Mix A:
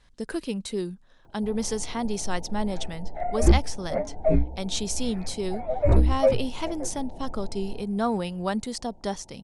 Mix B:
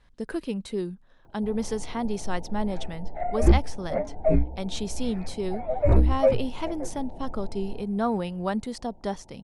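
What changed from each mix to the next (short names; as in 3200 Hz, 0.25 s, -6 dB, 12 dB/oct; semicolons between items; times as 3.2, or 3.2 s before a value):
speech: add bell 7200 Hz -8.5 dB 2 oct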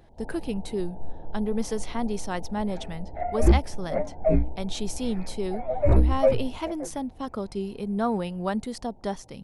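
speech: remove LPF 10000 Hz 12 dB/oct; first sound: entry -1.25 s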